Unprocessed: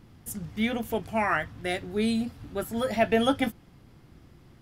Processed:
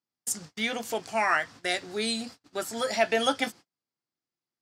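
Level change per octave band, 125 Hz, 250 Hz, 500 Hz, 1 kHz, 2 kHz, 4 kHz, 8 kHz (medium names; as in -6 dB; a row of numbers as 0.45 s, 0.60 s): -11.5 dB, -8.0 dB, -1.5 dB, +1.0 dB, +2.5 dB, +5.0 dB, +9.0 dB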